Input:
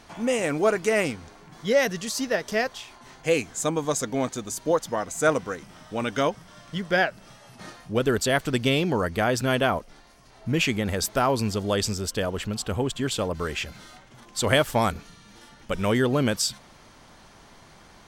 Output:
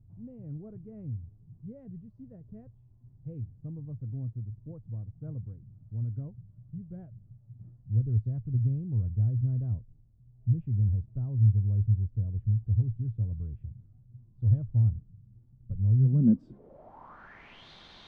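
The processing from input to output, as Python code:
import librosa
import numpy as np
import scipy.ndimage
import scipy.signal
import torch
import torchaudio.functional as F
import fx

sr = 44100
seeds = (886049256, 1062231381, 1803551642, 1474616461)

y = fx.filter_sweep_lowpass(x, sr, from_hz=110.0, to_hz=3700.0, start_s=15.95, end_s=17.68, q=6.0)
y = y * 10.0 ** (-4.5 / 20.0)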